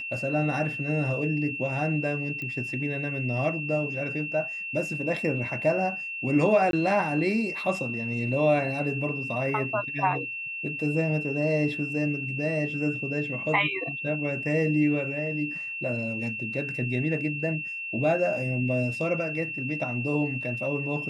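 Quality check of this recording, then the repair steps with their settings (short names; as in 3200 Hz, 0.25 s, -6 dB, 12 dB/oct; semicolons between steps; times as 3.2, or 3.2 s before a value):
tone 2700 Hz -32 dBFS
2.42 pop -23 dBFS
6.71–6.73 gap 22 ms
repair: de-click; notch 2700 Hz, Q 30; interpolate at 6.71, 22 ms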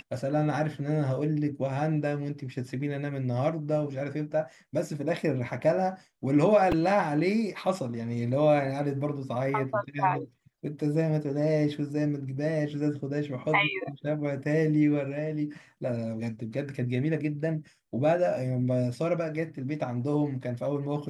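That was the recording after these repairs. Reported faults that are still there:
none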